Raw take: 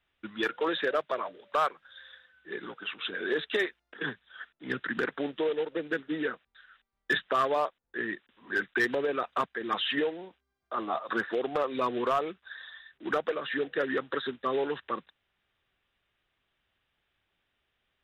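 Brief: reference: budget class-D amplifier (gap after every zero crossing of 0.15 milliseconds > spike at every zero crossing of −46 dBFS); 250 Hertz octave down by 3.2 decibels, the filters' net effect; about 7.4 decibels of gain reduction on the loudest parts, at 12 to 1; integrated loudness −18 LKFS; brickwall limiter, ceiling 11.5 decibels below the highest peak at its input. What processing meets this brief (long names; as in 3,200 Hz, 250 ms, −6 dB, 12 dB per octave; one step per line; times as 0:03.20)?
parametric band 250 Hz −4.5 dB
downward compressor 12 to 1, threshold −30 dBFS
brickwall limiter −32 dBFS
gap after every zero crossing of 0.15 ms
spike at every zero crossing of −46 dBFS
level +25 dB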